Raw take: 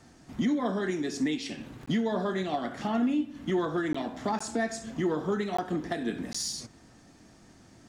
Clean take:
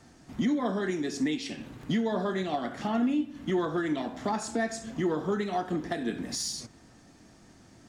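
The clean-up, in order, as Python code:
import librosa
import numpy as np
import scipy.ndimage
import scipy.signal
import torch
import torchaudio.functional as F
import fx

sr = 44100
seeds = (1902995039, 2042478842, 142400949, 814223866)

y = fx.fix_interpolate(x, sr, at_s=(1.86, 3.93, 4.39, 5.57, 6.33), length_ms=15.0)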